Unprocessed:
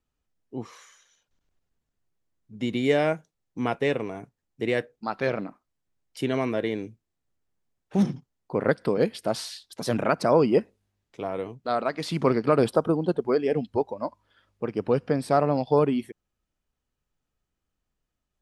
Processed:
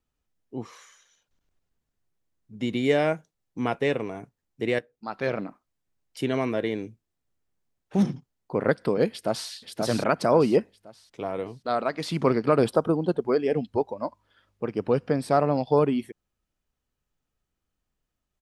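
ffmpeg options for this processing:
ffmpeg -i in.wav -filter_complex "[0:a]asplit=2[link_01][link_02];[link_02]afade=type=in:start_time=9.09:duration=0.01,afade=type=out:start_time=9.5:duration=0.01,aecho=0:1:530|1060|1590|2120|2650:0.707946|0.247781|0.0867234|0.0303532|0.0106236[link_03];[link_01][link_03]amix=inputs=2:normalize=0,asplit=2[link_04][link_05];[link_04]atrim=end=4.79,asetpts=PTS-STARTPTS,afade=type=out:start_time=4.786:duration=0.004:curve=hsin:silence=0.223872[link_06];[link_05]atrim=start=4.79,asetpts=PTS-STARTPTS,afade=type=in:duration=0.58:silence=0.223872[link_07];[link_06][link_07]concat=n=2:v=0:a=1" out.wav

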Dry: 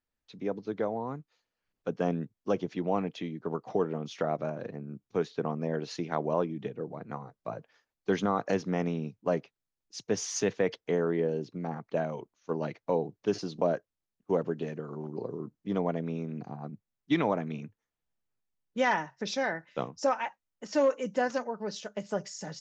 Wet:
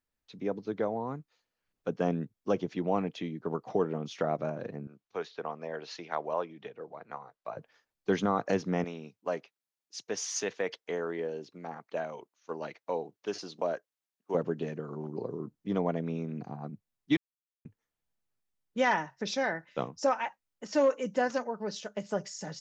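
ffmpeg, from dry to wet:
ffmpeg -i in.wav -filter_complex "[0:a]asettb=1/sr,asplit=3[link_01][link_02][link_03];[link_01]atrim=end=4.874[link_04];[link_02]atrim=start=4.87:end=7.57,asetpts=PTS-STARTPTS,afade=type=in:duration=0.004:curve=qsin,afade=type=out:start_time=2.696:duration=0.004:curve=qsin,acrossover=split=500 6400:gain=0.158 1 0.141[link_05][link_06][link_07];[link_05][link_06][link_07]amix=inputs=3:normalize=0[link_08];[link_03]atrim=start=7.566[link_09];[link_04][link_08]acrossfade=duration=0.004:curve1=hsin:curve2=qsin[link_10];[link_10][link_09]acrossfade=duration=0.004:curve1=qsin:curve2=hsin,asettb=1/sr,asplit=3[link_11][link_12][link_13];[link_11]atrim=end=8.844[link_14];[link_12]atrim=start=8.84:end=14.35,asetpts=PTS-STARTPTS,afade=type=in:duration=0.004:curve=qsin,afade=type=out:start_time=5.506:duration=0.004:curve=qsin,highpass=frequency=700:poles=1[link_15];[link_13]atrim=start=14.346[link_16];[link_14][link_15]acrossfade=duration=0.004:curve1=hsin:curve2=qsin[link_17];[link_17][link_16]acrossfade=duration=0.004:curve1=qsin:curve2=hsin,asplit=3[link_18][link_19][link_20];[link_18]atrim=end=17.17,asetpts=PTS-STARTPTS,afade=type=out:start_time=17.166:duration=0.004:curve=hsin[link_21];[link_19]atrim=start=17.17:end=17.65,asetpts=PTS-STARTPTS,volume=0[link_22];[link_20]atrim=start=17.65,asetpts=PTS-STARTPTS,afade=type=in:duration=0.004:curve=hsin[link_23];[link_21][link_22][link_23]concat=n=3:v=0:a=1" out.wav

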